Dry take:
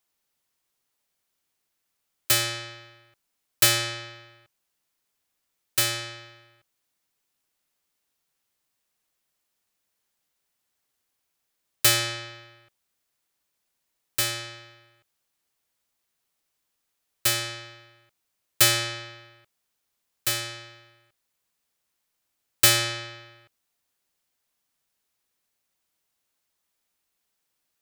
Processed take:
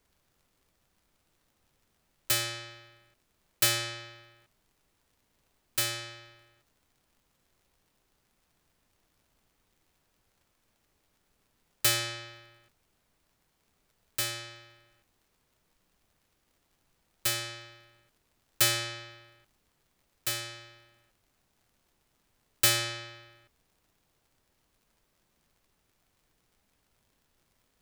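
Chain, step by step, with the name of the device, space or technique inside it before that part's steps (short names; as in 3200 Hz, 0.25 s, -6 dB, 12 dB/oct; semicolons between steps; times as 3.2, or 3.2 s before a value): vinyl LP (crackle; pink noise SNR 35 dB); gain -6 dB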